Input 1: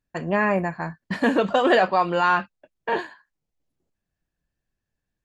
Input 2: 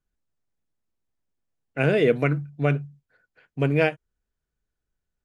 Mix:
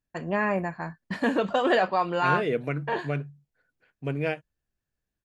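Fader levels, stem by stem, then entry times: -4.5, -7.5 dB; 0.00, 0.45 s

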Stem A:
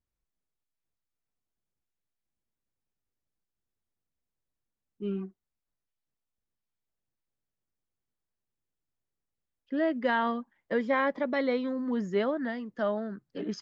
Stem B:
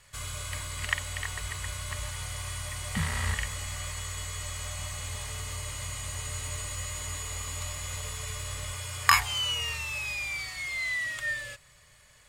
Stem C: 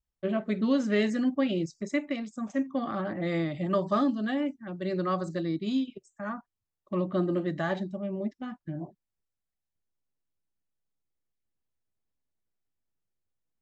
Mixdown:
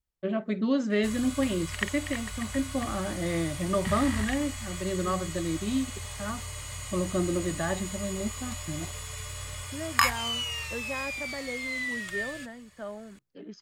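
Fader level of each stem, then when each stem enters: -9.5, -2.0, -0.5 dB; 0.00, 0.90, 0.00 s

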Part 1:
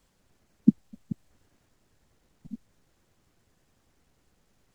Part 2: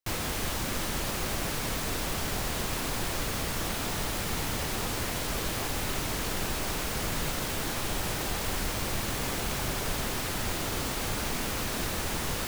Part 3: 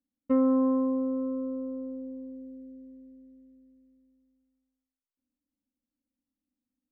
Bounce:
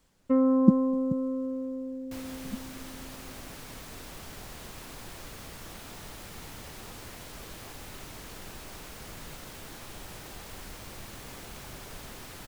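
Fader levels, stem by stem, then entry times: +1.0, -12.5, +0.5 dB; 0.00, 2.05, 0.00 s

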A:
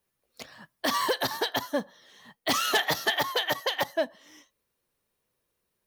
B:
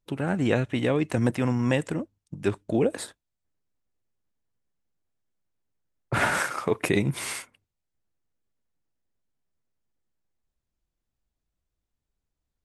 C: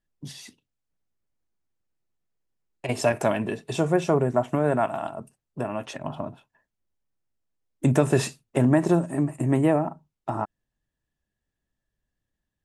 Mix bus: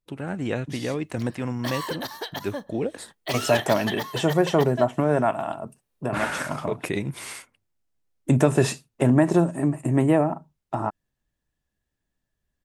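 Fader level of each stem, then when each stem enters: -5.0, -4.0, +1.5 dB; 0.80, 0.00, 0.45 s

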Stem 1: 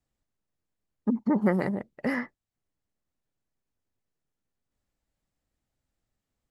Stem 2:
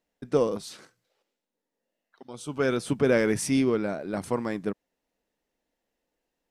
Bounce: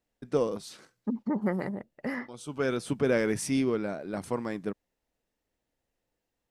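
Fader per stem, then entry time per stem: -5.0, -3.5 dB; 0.00, 0.00 s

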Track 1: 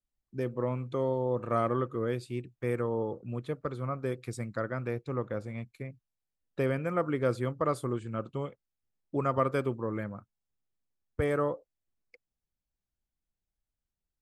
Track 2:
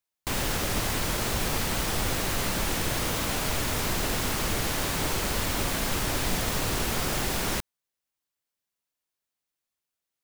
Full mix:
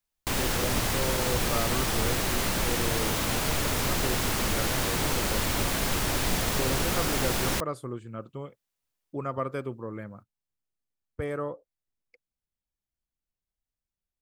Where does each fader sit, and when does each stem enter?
-3.5, +0.5 dB; 0.00, 0.00 s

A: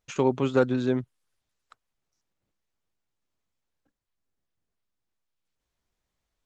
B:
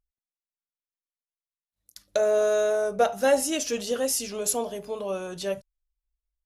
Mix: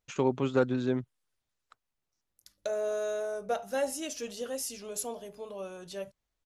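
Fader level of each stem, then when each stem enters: -4.0, -9.5 dB; 0.00, 0.50 s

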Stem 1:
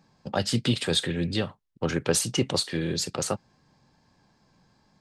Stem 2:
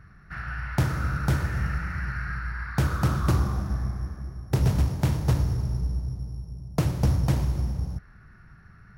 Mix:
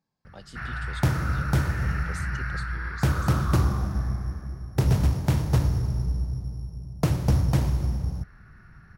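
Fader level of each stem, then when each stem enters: -20.0, +1.0 dB; 0.00, 0.25 s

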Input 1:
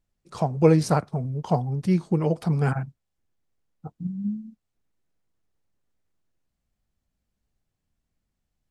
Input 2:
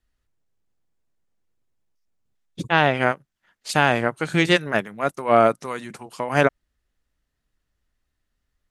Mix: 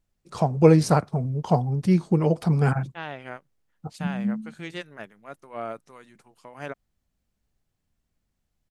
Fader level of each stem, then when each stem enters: +2.0, -18.0 dB; 0.00, 0.25 s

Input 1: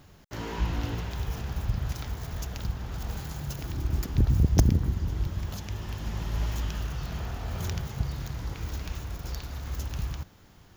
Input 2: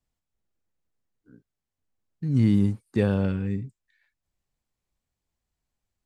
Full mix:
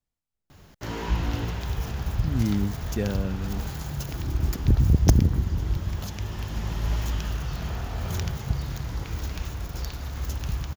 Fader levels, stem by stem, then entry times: +3.0, -5.0 dB; 0.50, 0.00 s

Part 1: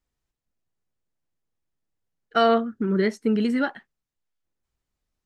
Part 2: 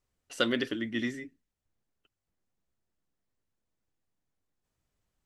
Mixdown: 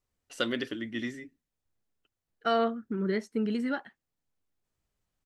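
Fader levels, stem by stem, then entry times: -7.5, -2.5 dB; 0.10, 0.00 s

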